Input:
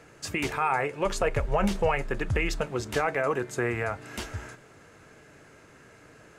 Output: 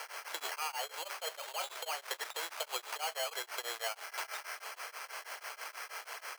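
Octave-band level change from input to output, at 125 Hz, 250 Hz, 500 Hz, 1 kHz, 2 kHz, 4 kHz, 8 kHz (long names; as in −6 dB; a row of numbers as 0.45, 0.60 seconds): below −40 dB, −32.5 dB, −16.0 dB, −10.0 dB, −8.5 dB, +1.5 dB, −0.5 dB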